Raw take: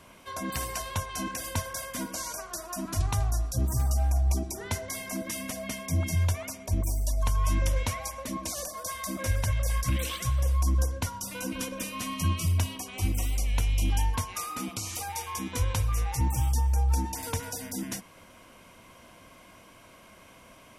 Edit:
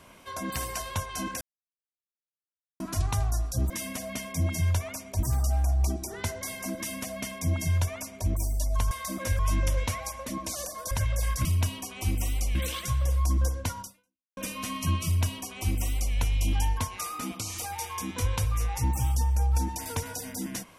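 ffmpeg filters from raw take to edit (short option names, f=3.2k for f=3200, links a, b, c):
-filter_complex "[0:a]asplit=11[a][b][c][d][e][f][g][h][i][j][k];[a]atrim=end=1.41,asetpts=PTS-STARTPTS,afade=t=out:st=1.406:d=0.004:c=hsin[l];[b]atrim=start=1.41:end=2.8,asetpts=PTS-STARTPTS,volume=0[m];[c]atrim=start=2.8:end=3.702,asetpts=PTS-STARTPTS,afade=t=in:d=0.004:c=hsin[n];[d]atrim=start=5.238:end=6.772[o];[e]atrim=start=3.698:end=7.382[p];[f]atrim=start=8.898:end=9.382[q];[g]atrim=start=7.378:end=8.902[r];[h]atrim=start=9.378:end=9.922[s];[i]atrim=start=12.418:end=13.522[t];[j]atrim=start=9.918:end=11.74,asetpts=PTS-STARTPTS,afade=t=out:st=1.272:d=0.55:c=exp[u];[k]atrim=start=11.74,asetpts=PTS-STARTPTS,afade=t=in:d=0.004:c=hsin[v];[l][m][n]concat=n=3:v=0:a=1[w];[w][o]acrossfade=d=0.004:c1=hsin:c2=hsin[x];[x][p]acrossfade=d=0.004:c1=hsin:c2=hsin[y];[y][q]acrossfade=d=0.004:c1=hsin:c2=hsin[z];[z][r]acrossfade=d=0.004:c1=hsin:c2=hsin[aa];[aa][s]acrossfade=d=0.004:c1=hsin:c2=hsin[ab];[ab][t]acrossfade=d=0.004:c1=hsin:c2=hsin[ac];[u][v]concat=n=2:v=0:a=1[ad];[ac][ad]acrossfade=d=0.004:c1=hsin:c2=hsin"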